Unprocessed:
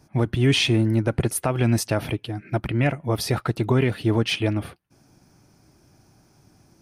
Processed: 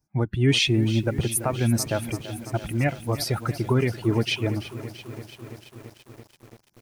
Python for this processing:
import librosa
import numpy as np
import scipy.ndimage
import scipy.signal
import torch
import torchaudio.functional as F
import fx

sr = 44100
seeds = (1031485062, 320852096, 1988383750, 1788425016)

y = fx.bin_expand(x, sr, power=1.5)
y = fx.high_shelf(y, sr, hz=4700.0, db=3.5)
y = fx.echo_crushed(y, sr, ms=336, feedback_pct=80, bits=7, wet_db=-14)